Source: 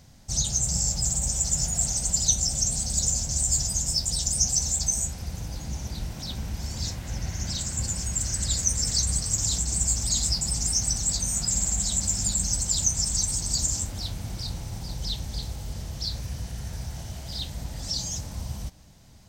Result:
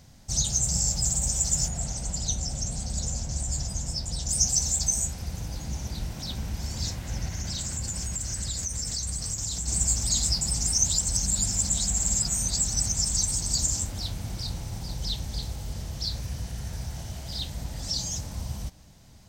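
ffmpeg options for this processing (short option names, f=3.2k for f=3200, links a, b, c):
-filter_complex "[0:a]asettb=1/sr,asplit=3[a][b][c];[a]atrim=end=1.684[d];[b]atrim=start=1.68:end=4.29,asetpts=PTS-STARTPTS,afade=t=in:d=0.004:c=qsin,afade=t=out:st=2.606:d=0.004:c=qsin,lowpass=f=2.5k:p=1[e];[c]atrim=start=4.286[f];[d][e]acrossfade=d=0.004:c1=hsin:c2=qsin[g];[g][f]acrossfade=d=0.004:c1=qsin:c2=hsin,asettb=1/sr,asplit=3[h][i][j];[h]atrim=end=7.274[k];[i]atrim=start=7.27:end=9.68,asetpts=PTS-STARTPTS,afade=t=in:d=0.004:c=qsin,afade=t=out:st=2.406:d=0.004:c=qsin,acompressor=threshold=-27dB:ratio=6:attack=3.2:release=140:knee=1:detection=peak[l];[j]atrim=start=9.676[m];[k][l]acrossfade=d=0.004:c1=hsin:c2=qsin[n];[n][m]acrossfade=d=0.004:c1=qsin:c2=hsin,asplit=3[o][p][q];[o]atrim=end=10.782[r];[p]atrim=start=10.778:end=12.922,asetpts=PTS-STARTPTS,areverse[s];[q]atrim=start=12.918[t];[r][s]acrossfade=d=0.004:c1=hsin:c2=hsin[u];[u][t]acrossfade=d=0.004:c1=hsin:c2=hsin"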